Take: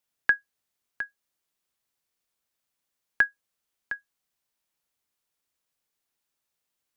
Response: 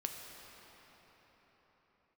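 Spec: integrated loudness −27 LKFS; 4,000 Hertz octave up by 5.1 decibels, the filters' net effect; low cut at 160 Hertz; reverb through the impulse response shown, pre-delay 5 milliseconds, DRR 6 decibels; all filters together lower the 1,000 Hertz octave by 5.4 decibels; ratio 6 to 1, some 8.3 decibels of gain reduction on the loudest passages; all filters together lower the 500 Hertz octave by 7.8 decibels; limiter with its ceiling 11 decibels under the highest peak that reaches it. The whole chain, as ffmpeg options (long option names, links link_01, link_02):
-filter_complex "[0:a]highpass=160,equalizer=frequency=500:width_type=o:gain=-8,equalizer=frequency=1000:width_type=o:gain=-7,equalizer=frequency=4000:width_type=o:gain=7.5,acompressor=threshold=-27dB:ratio=6,alimiter=limit=-22dB:level=0:latency=1,asplit=2[link_01][link_02];[1:a]atrim=start_sample=2205,adelay=5[link_03];[link_02][link_03]afir=irnorm=-1:irlink=0,volume=-6.5dB[link_04];[link_01][link_04]amix=inputs=2:normalize=0,volume=16dB"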